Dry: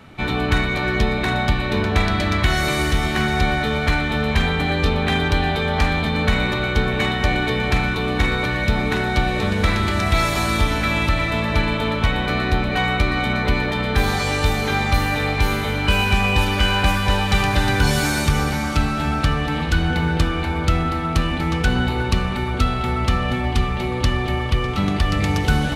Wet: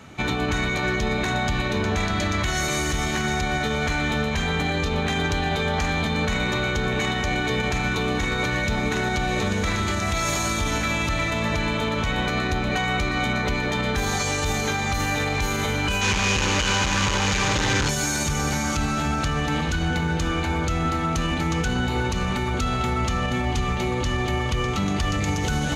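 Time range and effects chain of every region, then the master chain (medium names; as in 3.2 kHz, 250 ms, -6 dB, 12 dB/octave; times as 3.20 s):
16.01–17.89 s: one-bit comparator + low-pass 4.3 kHz + band-stop 700 Hz, Q 5.2
whole clip: high-pass 46 Hz 6 dB/octave; peaking EQ 6.6 kHz +14 dB 0.33 oct; peak limiter -15 dBFS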